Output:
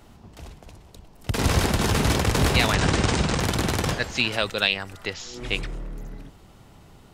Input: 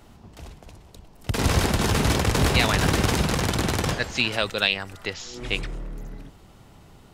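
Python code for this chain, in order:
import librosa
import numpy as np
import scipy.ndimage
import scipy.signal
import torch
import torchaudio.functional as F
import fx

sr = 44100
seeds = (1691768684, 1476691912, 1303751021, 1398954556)

y = fx.steep_lowpass(x, sr, hz=9100.0, slope=72, at=(2.74, 3.4))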